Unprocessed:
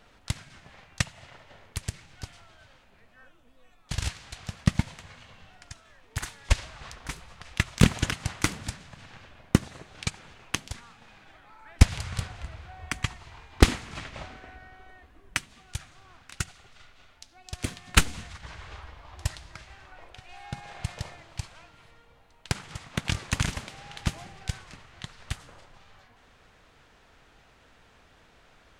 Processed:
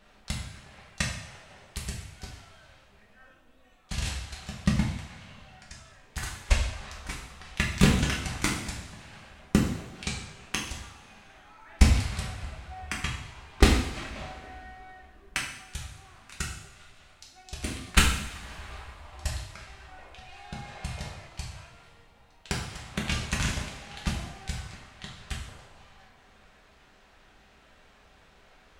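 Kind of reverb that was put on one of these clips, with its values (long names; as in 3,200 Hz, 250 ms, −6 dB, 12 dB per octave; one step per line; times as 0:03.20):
coupled-rooms reverb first 0.69 s, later 2.8 s, from −21 dB, DRR −3 dB
level −4 dB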